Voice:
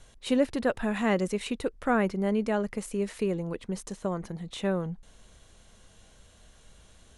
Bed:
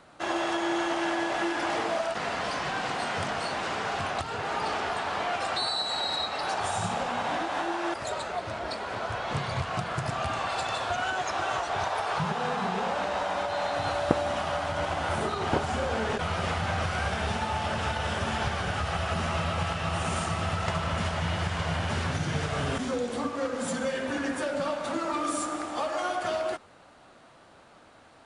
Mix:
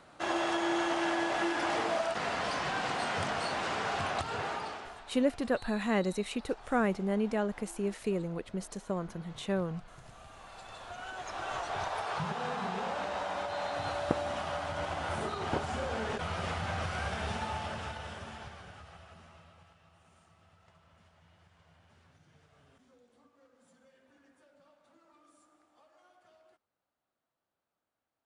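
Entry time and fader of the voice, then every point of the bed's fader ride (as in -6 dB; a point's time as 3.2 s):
4.85 s, -3.5 dB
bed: 4.42 s -2.5 dB
5.14 s -23 dB
10.29 s -23 dB
11.64 s -6 dB
17.49 s -6 dB
19.95 s -34.5 dB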